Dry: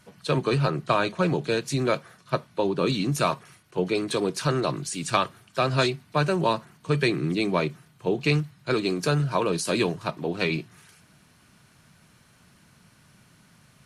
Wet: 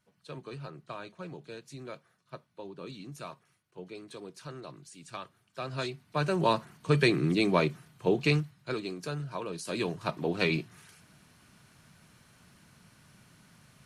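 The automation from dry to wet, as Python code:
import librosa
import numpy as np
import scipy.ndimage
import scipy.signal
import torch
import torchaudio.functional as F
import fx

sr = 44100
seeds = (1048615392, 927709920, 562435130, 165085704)

y = fx.gain(x, sr, db=fx.line((5.12, -19.0), (5.85, -11.5), (6.57, -1.0), (8.15, -1.0), (8.96, -12.5), (9.56, -12.5), (10.14, -2.0)))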